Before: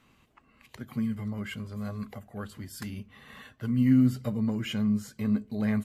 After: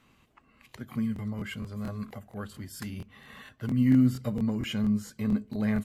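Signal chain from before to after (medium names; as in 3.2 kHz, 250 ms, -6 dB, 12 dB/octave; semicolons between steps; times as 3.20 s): crackling interface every 0.23 s, samples 1024, repeat, from 0.68 s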